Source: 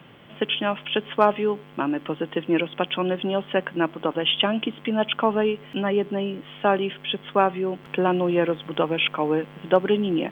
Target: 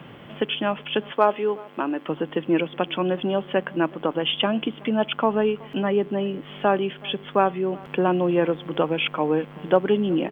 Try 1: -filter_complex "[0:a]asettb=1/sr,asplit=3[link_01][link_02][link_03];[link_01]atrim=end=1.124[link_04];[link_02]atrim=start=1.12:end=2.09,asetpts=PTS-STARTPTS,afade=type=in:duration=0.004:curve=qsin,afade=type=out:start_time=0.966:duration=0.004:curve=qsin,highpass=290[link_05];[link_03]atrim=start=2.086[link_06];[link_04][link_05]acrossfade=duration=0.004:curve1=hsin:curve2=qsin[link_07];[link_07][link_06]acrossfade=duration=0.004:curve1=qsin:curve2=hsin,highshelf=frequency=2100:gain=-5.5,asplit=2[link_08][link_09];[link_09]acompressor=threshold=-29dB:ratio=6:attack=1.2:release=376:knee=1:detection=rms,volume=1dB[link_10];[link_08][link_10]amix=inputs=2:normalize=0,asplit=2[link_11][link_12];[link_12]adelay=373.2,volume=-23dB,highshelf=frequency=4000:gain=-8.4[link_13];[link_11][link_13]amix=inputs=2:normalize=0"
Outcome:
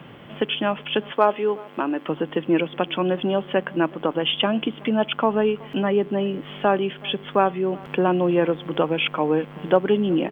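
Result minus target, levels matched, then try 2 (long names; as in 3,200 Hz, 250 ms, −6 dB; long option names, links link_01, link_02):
downward compressor: peak gain reduction −8 dB
-filter_complex "[0:a]asettb=1/sr,asplit=3[link_01][link_02][link_03];[link_01]atrim=end=1.124[link_04];[link_02]atrim=start=1.12:end=2.09,asetpts=PTS-STARTPTS,afade=type=in:duration=0.004:curve=qsin,afade=type=out:start_time=0.966:duration=0.004:curve=qsin,highpass=290[link_05];[link_03]atrim=start=2.086[link_06];[link_04][link_05]acrossfade=duration=0.004:curve1=hsin:curve2=qsin[link_07];[link_07][link_06]acrossfade=duration=0.004:curve1=qsin:curve2=hsin,highshelf=frequency=2100:gain=-5.5,asplit=2[link_08][link_09];[link_09]acompressor=threshold=-38.5dB:ratio=6:attack=1.2:release=376:knee=1:detection=rms,volume=1dB[link_10];[link_08][link_10]amix=inputs=2:normalize=0,asplit=2[link_11][link_12];[link_12]adelay=373.2,volume=-23dB,highshelf=frequency=4000:gain=-8.4[link_13];[link_11][link_13]amix=inputs=2:normalize=0"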